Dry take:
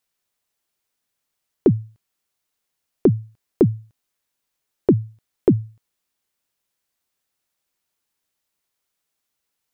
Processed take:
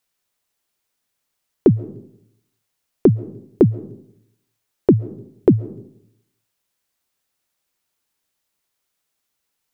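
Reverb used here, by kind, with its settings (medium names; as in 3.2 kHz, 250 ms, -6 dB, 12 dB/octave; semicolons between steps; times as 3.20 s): algorithmic reverb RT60 0.72 s, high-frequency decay 0.35×, pre-delay 95 ms, DRR 19 dB; trim +2.5 dB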